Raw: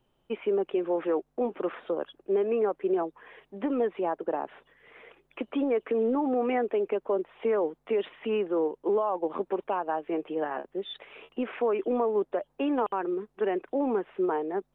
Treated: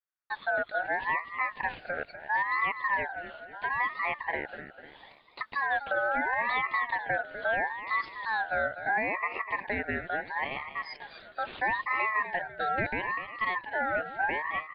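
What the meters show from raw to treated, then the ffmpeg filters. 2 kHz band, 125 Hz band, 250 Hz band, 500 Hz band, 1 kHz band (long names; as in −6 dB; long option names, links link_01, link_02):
+16.0 dB, can't be measured, −14.0 dB, −10.5 dB, +3.5 dB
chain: -af "agate=range=-33dB:threshold=-55dB:ratio=3:detection=peak,afreqshift=13,aecho=1:1:249|498|747|996|1245:0.282|0.127|0.0571|0.0257|0.0116,aeval=exprs='val(0)*sin(2*PI*1300*n/s+1300*0.2/0.75*sin(2*PI*0.75*n/s))':channel_layout=same"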